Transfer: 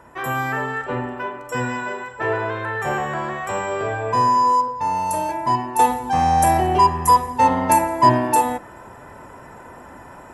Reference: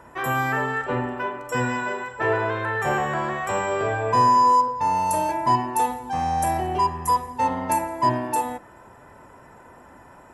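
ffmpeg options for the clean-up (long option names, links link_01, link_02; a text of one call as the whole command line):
ffmpeg -i in.wav -af "asetnsamples=nb_out_samples=441:pad=0,asendcmd='5.79 volume volume -7dB',volume=0dB" out.wav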